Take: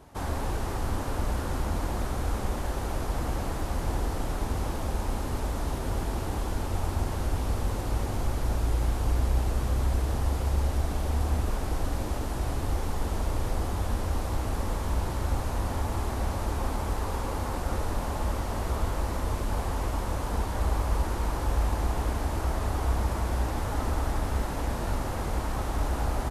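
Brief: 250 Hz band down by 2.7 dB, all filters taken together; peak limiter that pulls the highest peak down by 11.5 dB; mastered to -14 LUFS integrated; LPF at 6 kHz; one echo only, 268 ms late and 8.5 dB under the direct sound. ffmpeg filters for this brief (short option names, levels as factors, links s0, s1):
-af "lowpass=6000,equalizer=f=250:t=o:g=-3.5,alimiter=level_in=1.26:limit=0.0631:level=0:latency=1,volume=0.794,aecho=1:1:268:0.376,volume=11.9"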